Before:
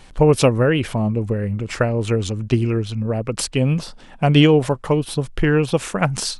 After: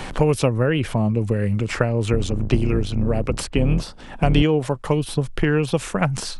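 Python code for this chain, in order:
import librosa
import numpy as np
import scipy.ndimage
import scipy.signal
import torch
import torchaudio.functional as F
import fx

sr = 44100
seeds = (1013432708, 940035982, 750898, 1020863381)

y = fx.octave_divider(x, sr, octaves=2, level_db=2.0, at=(2.12, 4.42))
y = fx.band_squash(y, sr, depth_pct=70)
y = y * librosa.db_to_amplitude(-3.0)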